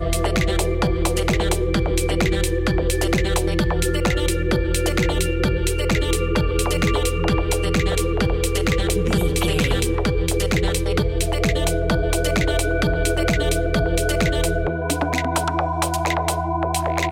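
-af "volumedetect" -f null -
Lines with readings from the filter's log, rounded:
mean_volume: -19.6 dB
max_volume: -9.5 dB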